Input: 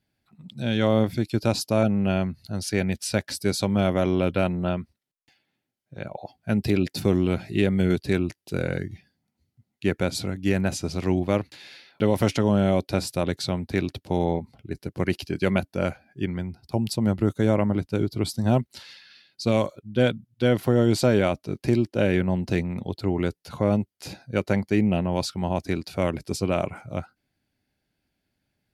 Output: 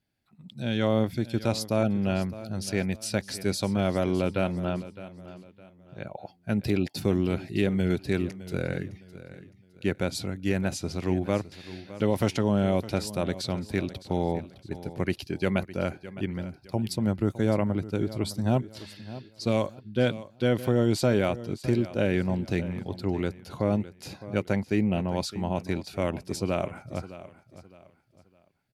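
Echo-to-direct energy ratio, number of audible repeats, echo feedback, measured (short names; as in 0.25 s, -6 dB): -15.0 dB, 2, 32%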